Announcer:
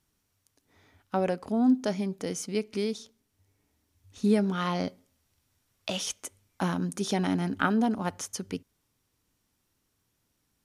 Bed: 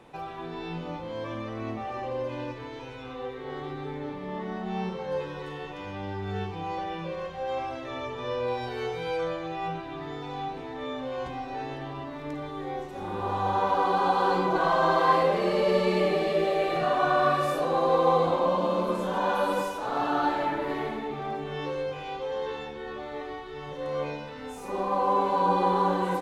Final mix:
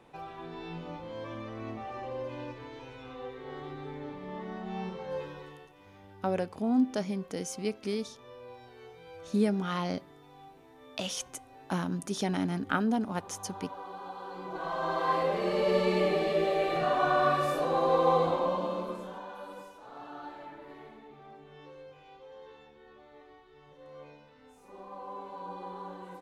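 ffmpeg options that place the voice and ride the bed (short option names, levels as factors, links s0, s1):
-filter_complex "[0:a]adelay=5100,volume=0.708[s0];[1:a]volume=3.35,afade=t=out:st=5.25:d=0.45:silence=0.223872,afade=t=in:st=14.32:d=1.47:silence=0.158489,afade=t=out:st=18.18:d=1.09:silence=0.16788[s1];[s0][s1]amix=inputs=2:normalize=0"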